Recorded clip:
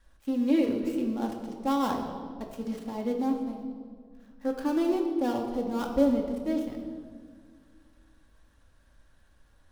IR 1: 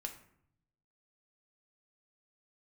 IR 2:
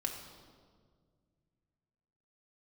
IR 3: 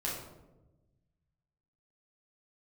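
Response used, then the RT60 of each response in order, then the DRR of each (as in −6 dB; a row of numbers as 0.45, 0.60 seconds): 2; 0.65, 1.8, 1.1 seconds; 3.0, 1.0, −5.0 decibels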